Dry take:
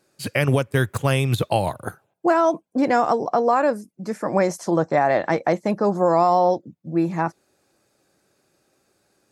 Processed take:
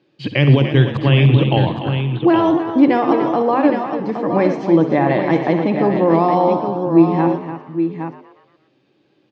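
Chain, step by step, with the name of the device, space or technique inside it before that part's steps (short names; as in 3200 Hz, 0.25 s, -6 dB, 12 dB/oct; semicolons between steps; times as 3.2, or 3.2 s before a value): notches 50/100/150 Hz; 0.97–1.57 elliptic band-pass 110–3200 Hz; tapped delay 65/294/817 ms -10.5/-10/-7.5 dB; frequency-shifting delay pedal into a guitar cabinet (frequency-shifting echo 0.118 s, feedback 53%, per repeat +92 Hz, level -14 dB; speaker cabinet 98–3900 Hz, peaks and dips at 140 Hz +10 dB, 310 Hz +10 dB, 660 Hz -5 dB, 1400 Hz -9 dB, 3100 Hz +8 dB); gain +2.5 dB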